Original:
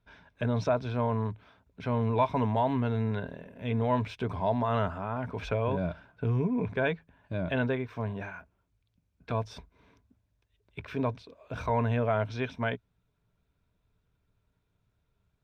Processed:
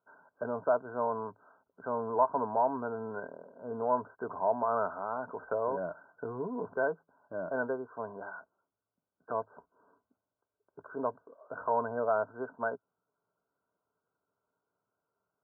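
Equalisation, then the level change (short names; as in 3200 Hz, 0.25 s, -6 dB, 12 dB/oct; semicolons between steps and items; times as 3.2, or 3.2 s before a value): HPF 470 Hz 12 dB/oct; brick-wall FIR low-pass 1600 Hz; air absorption 420 m; +2.5 dB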